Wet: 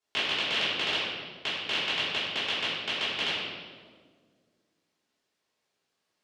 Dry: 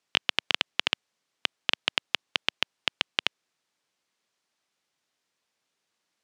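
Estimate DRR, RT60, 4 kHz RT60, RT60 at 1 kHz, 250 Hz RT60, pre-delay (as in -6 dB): -14.5 dB, 1.7 s, 1.1 s, 1.4 s, 2.4 s, 3 ms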